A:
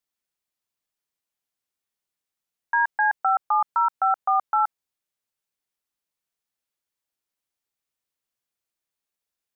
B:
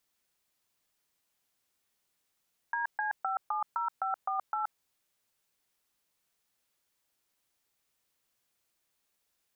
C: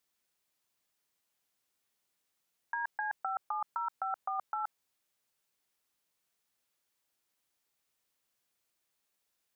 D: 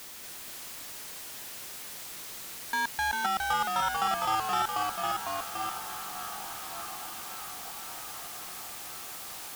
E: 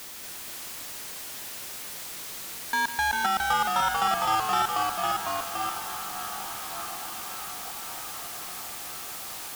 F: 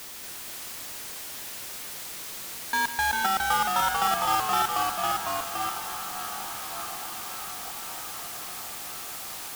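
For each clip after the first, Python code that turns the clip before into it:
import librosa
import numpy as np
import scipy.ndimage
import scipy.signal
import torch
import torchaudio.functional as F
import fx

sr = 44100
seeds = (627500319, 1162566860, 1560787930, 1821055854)

y1 = fx.over_compress(x, sr, threshold_db=-30.0, ratio=-1.0)
y1 = y1 * 10.0 ** (-2.0 / 20.0)
y2 = fx.low_shelf(y1, sr, hz=95.0, db=-5.0)
y2 = y2 * 10.0 ** (-2.5 / 20.0)
y3 = fx.power_curve(y2, sr, exponent=0.35)
y3 = fx.echo_diffused(y3, sr, ms=1269, feedback_pct=56, wet_db=-11)
y3 = fx.echo_pitch(y3, sr, ms=234, semitones=-1, count=2, db_per_echo=-3.0)
y4 = y3 + 10.0 ** (-13.0 / 20.0) * np.pad(y3, (int(151 * sr / 1000.0), 0))[:len(y3)]
y4 = y4 * 10.0 ** (3.5 / 20.0)
y5 = fx.mod_noise(y4, sr, seeds[0], snr_db=12)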